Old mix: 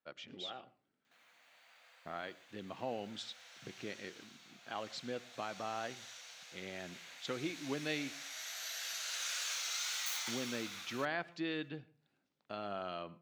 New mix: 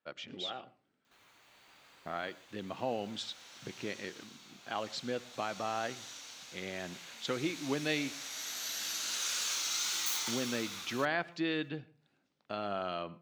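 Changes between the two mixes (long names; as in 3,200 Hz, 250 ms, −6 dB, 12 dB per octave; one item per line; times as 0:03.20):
speech +5.0 dB
background: remove Chebyshev high-pass with heavy ripple 480 Hz, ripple 6 dB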